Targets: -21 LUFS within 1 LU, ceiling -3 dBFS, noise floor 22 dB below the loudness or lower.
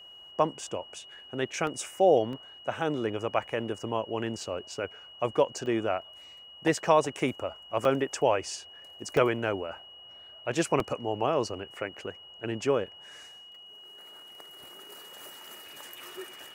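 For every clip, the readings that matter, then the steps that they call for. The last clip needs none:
dropouts 6; longest dropout 1.6 ms; steady tone 2900 Hz; tone level -47 dBFS; loudness -30.0 LUFS; peak -9.0 dBFS; loudness target -21.0 LUFS
-> interpolate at 1.67/2.33/5.66/7.85/9.17/10.8, 1.6 ms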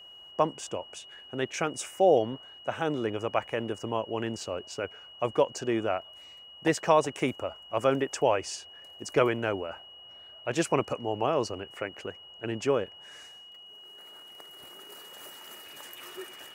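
dropouts 0; steady tone 2900 Hz; tone level -47 dBFS
-> notch 2900 Hz, Q 30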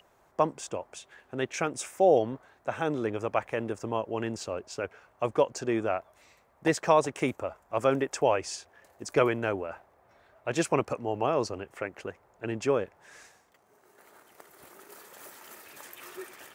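steady tone none; loudness -30.0 LUFS; peak -9.0 dBFS; loudness target -21.0 LUFS
-> gain +9 dB; limiter -3 dBFS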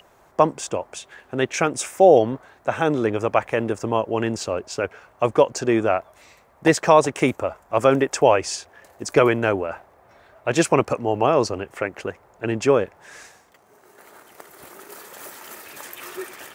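loudness -21.0 LUFS; peak -3.0 dBFS; noise floor -55 dBFS

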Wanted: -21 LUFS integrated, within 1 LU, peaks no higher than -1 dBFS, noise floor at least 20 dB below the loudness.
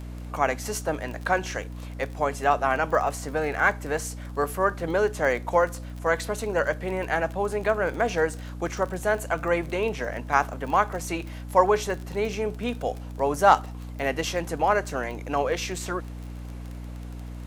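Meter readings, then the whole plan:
ticks 30/s; hum 60 Hz; harmonics up to 300 Hz; hum level -34 dBFS; loudness -26.0 LUFS; peak -5.0 dBFS; loudness target -21.0 LUFS
-> de-click; de-hum 60 Hz, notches 5; gain +5 dB; limiter -1 dBFS

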